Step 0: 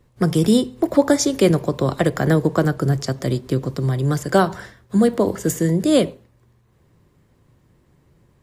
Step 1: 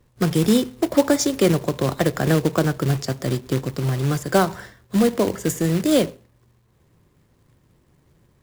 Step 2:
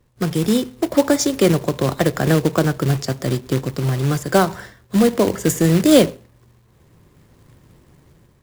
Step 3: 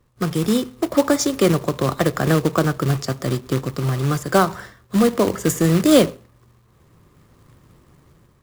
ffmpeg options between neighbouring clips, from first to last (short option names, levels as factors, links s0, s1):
-af "acrusher=bits=3:mode=log:mix=0:aa=0.000001,volume=0.794"
-af "dynaudnorm=f=350:g=5:m=3.35,volume=0.891"
-af "equalizer=f=1200:t=o:w=0.29:g=7.5,volume=0.841"